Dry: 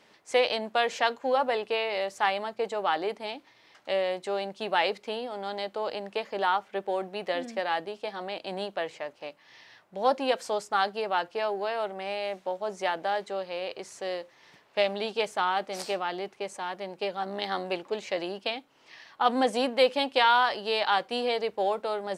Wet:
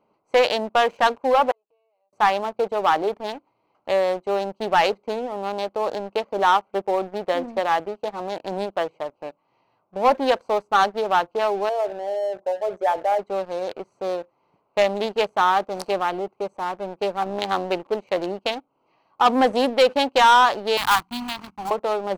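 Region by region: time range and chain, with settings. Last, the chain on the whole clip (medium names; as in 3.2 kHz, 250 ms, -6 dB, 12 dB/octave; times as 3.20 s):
1.51–2.13 s: high-pass 420 Hz + inverted gate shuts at -29 dBFS, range -35 dB + comb 6.3 ms, depth 82%
11.69–13.19 s: resonances exaggerated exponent 2 + Butterworth band-stop 3.6 kHz, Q 0.69 + flutter echo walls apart 11.5 m, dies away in 0.25 s
20.77–21.71 s: block-companded coder 3-bit + Chebyshev band-stop 250–1000 Hz + de-hum 91.58 Hz, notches 3
whole clip: local Wiener filter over 25 samples; peaking EQ 1.1 kHz +5.5 dB 0.85 oct; waveshaping leveller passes 2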